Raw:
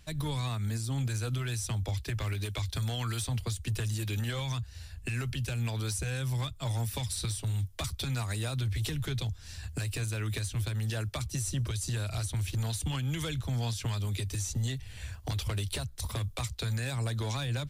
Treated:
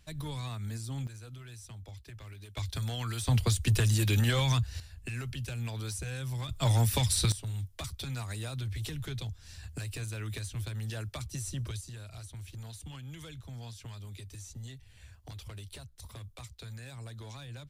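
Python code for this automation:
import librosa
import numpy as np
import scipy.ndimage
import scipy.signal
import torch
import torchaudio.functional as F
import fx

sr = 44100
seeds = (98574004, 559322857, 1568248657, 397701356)

y = fx.gain(x, sr, db=fx.steps((0.0, -5.0), (1.07, -14.0), (2.57, -2.0), (3.27, 6.5), (4.8, -4.0), (6.49, 6.5), (7.32, -4.5), (11.81, -12.0)))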